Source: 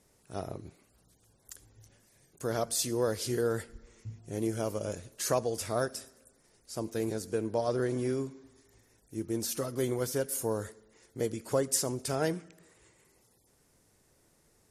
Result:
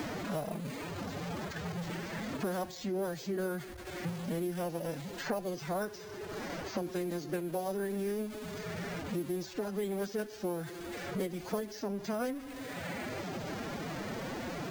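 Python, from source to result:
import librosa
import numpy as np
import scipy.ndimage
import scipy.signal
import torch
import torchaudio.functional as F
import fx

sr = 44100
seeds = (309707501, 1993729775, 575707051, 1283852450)

y = x + 0.5 * 10.0 ** (-40.0 / 20.0) * np.sign(x)
y = fx.pitch_keep_formants(y, sr, semitones=8.0)
y = np.repeat(scipy.signal.resample_poly(y, 1, 4), 4)[:len(y)]
y = fx.band_squash(y, sr, depth_pct=100)
y = F.gain(torch.from_numpy(y), -4.0).numpy()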